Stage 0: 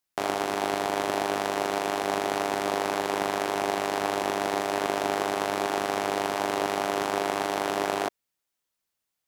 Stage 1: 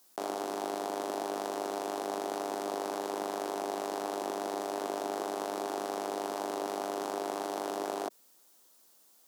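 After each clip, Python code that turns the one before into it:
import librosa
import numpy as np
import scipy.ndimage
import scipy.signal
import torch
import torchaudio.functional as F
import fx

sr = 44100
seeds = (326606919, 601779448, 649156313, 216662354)

y = scipy.signal.sosfilt(scipy.signal.butter(4, 220.0, 'highpass', fs=sr, output='sos'), x)
y = fx.peak_eq(y, sr, hz=2200.0, db=-11.0, octaves=1.4)
y = fx.env_flatten(y, sr, amount_pct=50)
y = y * 10.0 ** (-7.0 / 20.0)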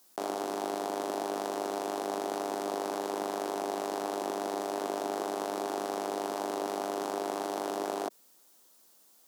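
y = fx.low_shelf(x, sr, hz=160.0, db=4.5)
y = y * 10.0 ** (1.0 / 20.0)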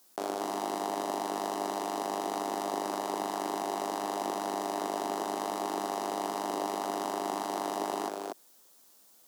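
y = x + 10.0 ** (-4.0 / 20.0) * np.pad(x, (int(239 * sr / 1000.0), 0))[:len(x)]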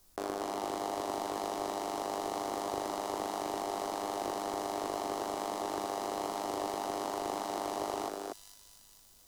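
y = fx.echo_wet_highpass(x, sr, ms=457, feedback_pct=49, hz=4200.0, wet_db=-6.0)
y = fx.dmg_noise_colour(y, sr, seeds[0], colour='brown', level_db=-66.0)
y = fx.doppler_dist(y, sr, depth_ms=0.32)
y = y * 10.0 ** (-2.5 / 20.0)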